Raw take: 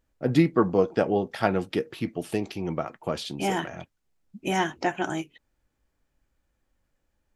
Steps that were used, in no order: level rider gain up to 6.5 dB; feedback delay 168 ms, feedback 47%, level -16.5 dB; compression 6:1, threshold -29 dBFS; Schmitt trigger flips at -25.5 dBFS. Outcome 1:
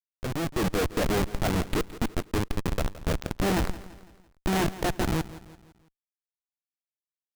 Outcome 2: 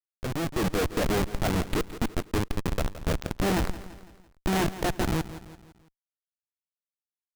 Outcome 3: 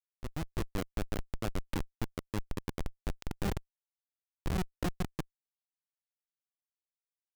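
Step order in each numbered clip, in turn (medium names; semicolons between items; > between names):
Schmitt trigger > compression > level rider > feedback delay; Schmitt trigger > feedback delay > compression > level rider; feedback delay > compression > Schmitt trigger > level rider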